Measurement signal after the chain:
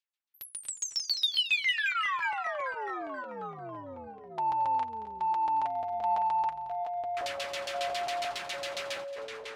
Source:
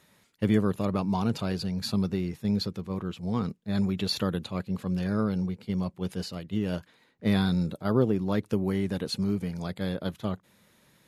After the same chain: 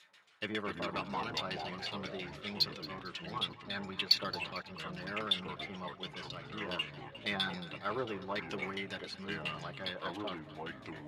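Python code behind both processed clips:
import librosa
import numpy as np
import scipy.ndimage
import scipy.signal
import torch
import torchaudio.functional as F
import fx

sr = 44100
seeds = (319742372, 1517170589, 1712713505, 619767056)

p1 = np.diff(x, prepend=0.0)
p2 = fx.filter_lfo_lowpass(p1, sr, shape='saw_down', hz=7.3, low_hz=670.0, high_hz=4000.0, q=1.5)
p3 = 10.0 ** (-39.0 / 20.0) * np.tanh(p2 / 10.0 ** (-39.0 / 20.0))
p4 = p2 + F.gain(torch.from_numpy(p3), -4.5).numpy()
p5 = fx.notch_comb(p4, sr, f0_hz=240.0)
p6 = p5 + fx.echo_feedback(p5, sr, ms=224, feedback_pct=47, wet_db=-16.0, dry=0)
p7 = fx.echo_pitch(p6, sr, ms=134, semitones=-4, count=3, db_per_echo=-6.0)
y = F.gain(torch.from_numpy(p7), 9.0).numpy()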